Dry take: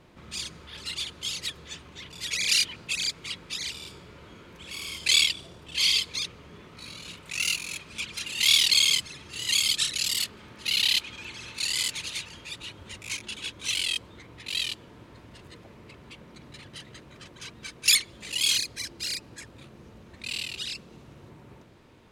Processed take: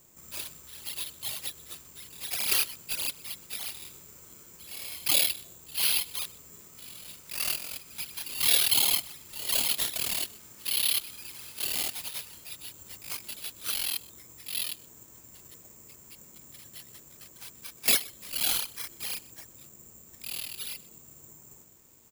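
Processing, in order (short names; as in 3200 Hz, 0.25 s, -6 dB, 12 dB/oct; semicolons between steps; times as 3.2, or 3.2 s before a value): echo 0.125 s -21.5 dB; careless resampling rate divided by 6×, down none, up zero stuff; gain -10.5 dB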